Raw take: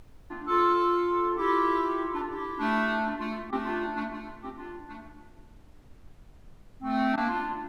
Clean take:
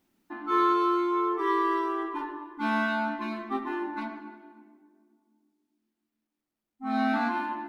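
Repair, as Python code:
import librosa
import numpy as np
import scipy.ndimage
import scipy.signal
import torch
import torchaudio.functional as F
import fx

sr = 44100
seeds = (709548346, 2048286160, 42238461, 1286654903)

y = fx.fix_interpolate(x, sr, at_s=(3.51, 7.16), length_ms=14.0)
y = fx.noise_reduce(y, sr, print_start_s=5.35, print_end_s=5.85, reduce_db=30.0)
y = fx.fix_echo_inverse(y, sr, delay_ms=928, level_db=-9.5)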